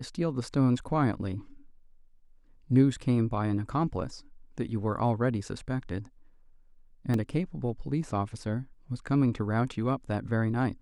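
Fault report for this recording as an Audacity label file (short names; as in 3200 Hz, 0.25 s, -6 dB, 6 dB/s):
7.140000	7.140000	gap 2.3 ms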